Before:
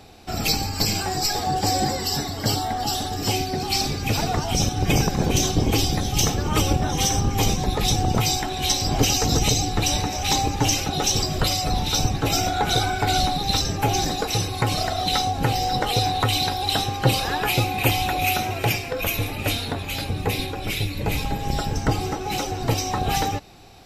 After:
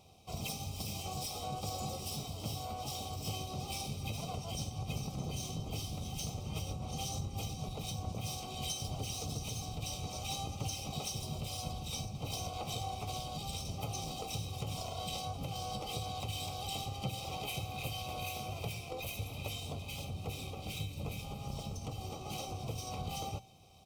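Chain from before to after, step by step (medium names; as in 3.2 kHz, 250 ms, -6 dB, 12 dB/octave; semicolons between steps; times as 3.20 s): comb filter that takes the minimum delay 0.35 ms; comb 1.6 ms, depth 55%; compression 8:1, threshold -22 dBFS, peak gain reduction 11 dB; high-pass 53 Hz 12 dB/octave; peaking EQ 150 Hz +6.5 dB 1.8 oct; hum notches 60/120/180/240 Hz; harmony voices -7 st -10 dB, -3 st -11 dB, +7 st -10 dB; Butterworth band-stop 1.7 kHz, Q 1.5; bass shelf 480 Hz -2.5 dB; feedback comb 770 Hz, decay 0.37 s, mix 80%; trim -1.5 dB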